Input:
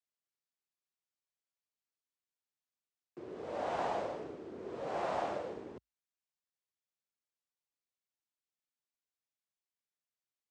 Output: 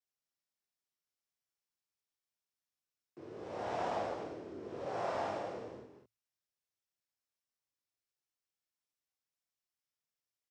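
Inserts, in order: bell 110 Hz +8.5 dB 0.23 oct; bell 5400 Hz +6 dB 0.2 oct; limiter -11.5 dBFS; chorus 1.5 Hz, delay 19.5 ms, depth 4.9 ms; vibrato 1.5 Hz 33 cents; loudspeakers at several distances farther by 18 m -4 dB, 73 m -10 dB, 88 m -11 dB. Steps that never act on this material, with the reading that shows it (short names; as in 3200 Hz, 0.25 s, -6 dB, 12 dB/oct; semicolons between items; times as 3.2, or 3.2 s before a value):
limiter -11.5 dBFS: input peak -23.0 dBFS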